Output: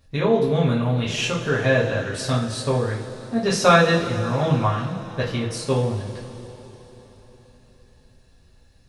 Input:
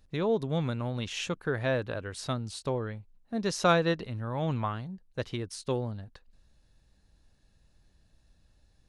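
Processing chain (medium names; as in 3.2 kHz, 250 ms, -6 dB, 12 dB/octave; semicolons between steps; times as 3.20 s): two-slope reverb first 0.39 s, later 4.3 s, from -18 dB, DRR -6.5 dB; trim +3 dB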